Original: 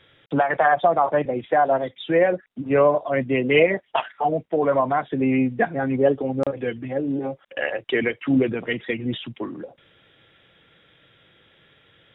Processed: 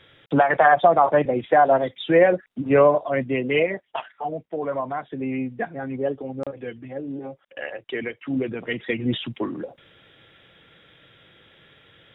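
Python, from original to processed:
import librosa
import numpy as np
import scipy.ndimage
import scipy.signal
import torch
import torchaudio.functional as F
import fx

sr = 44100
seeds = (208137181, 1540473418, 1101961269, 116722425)

y = fx.gain(x, sr, db=fx.line((2.7, 2.5), (3.96, -7.0), (8.31, -7.0), (9.11, 3.0)))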